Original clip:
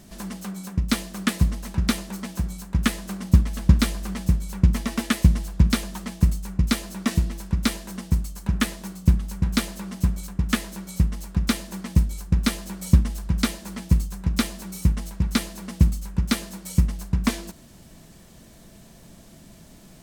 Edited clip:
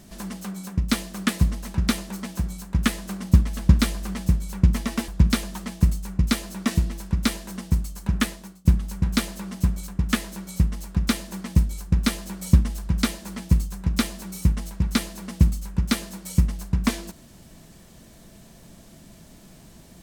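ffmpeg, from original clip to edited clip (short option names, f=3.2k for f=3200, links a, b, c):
-filter_complex "[0:a]asplit=3[a][b][c];[a]atrim=end=5.082[d];[b]atrim=start=5.478:end=9.05,asetpts=PTS-STARTPTS,afade=t=out:st=3.142:d=0.43:silence=0.0841395[e];[c]atrim=start=9.05,asetpts=PTS-STARTPTS,afade=t=in:d=0.004:c=hsin:silence=0.0841395[f];[e][f]concat=n=2:v=0:a=1[g];[d][g]acrossfade=d=0.004:c1=hsin:c2=hsin"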